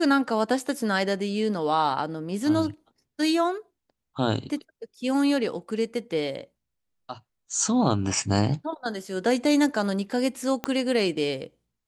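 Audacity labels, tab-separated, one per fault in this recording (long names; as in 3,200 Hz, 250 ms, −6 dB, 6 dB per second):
10.640000	10.640000	click −13 dBFS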